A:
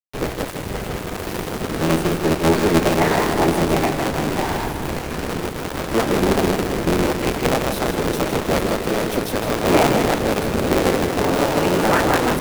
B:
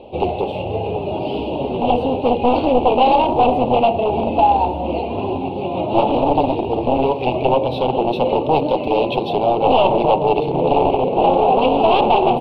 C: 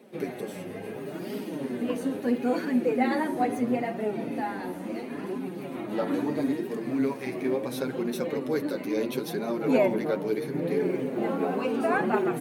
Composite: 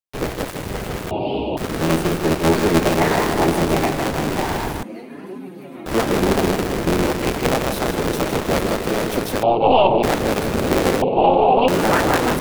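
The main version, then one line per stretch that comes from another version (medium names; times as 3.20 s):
A
1.11–1.57 s: from B
4.83–5.86 s: from C
9.43–10.03 s: from B
11.02–11.68 s: from B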